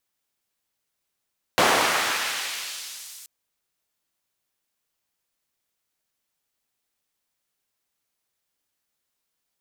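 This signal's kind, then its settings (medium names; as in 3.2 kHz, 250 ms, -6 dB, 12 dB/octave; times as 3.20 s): swept filtered noise white, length 1.68 s bandpass, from 590 Hz, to 8.3 kHz, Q 0.73, exponential, gain ramp -35 dB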